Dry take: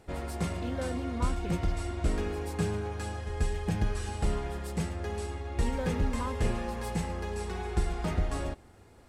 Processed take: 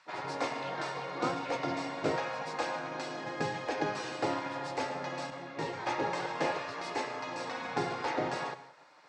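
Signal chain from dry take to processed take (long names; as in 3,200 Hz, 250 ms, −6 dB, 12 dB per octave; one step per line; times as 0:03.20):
gate on every frequency bin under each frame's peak −15 dB weak
loudspeaker in its box 130–5,600 Hz, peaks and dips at 140 Hz +6 dB, 200 Hz −10 dB, 280 Hz +4 dB, 540 Hz +4 dB, 890 Hz +6 dB, 3,100 Hz −5 dB
reverb whose tail is shaped and stops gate 210 ms flat, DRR 12 dB
0:05.30–0:05.87: micro pitch shift up and down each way 36 cents
level +5.5 dB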